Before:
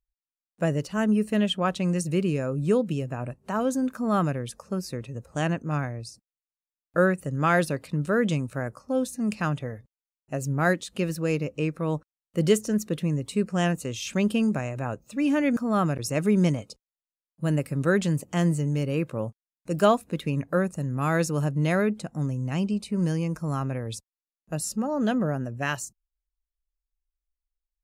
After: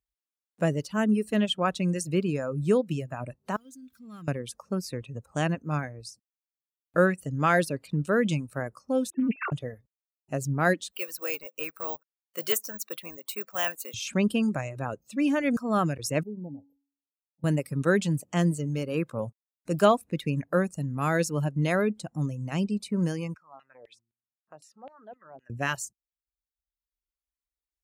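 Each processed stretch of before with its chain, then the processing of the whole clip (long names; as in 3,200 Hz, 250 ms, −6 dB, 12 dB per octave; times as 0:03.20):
0:03.56–0:04.28: converter with a step at zero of −42 dBFS + guitar amp tone stack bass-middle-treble 6-0-2
0:09.10–0:09.52: three sine waves on the formant tracks + highs frequency-modulated by the lows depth 0.23 ms
0:10.91–0:13.94: high-pass filter 720 Hz + bad sample-rate conversion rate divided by 2×, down none, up zero stuff
0:16.23–0:17.44: linear-phase brick-wall band-stop 980–12,000 Hz + tuned comb filter 280 Hz, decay 0.52 s, harmonics odd, mix 80%
0:23.34–0:25.50: hum removal 57.81 Hz, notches 6 + downward compressor 5 to 1, threshold −34 dBFS + auto-filter band-pass saw down 3.9 Hz 540–2,900 Hz
whole clip: reverb reduction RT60 0.98 s; high-pass filter 59 Hz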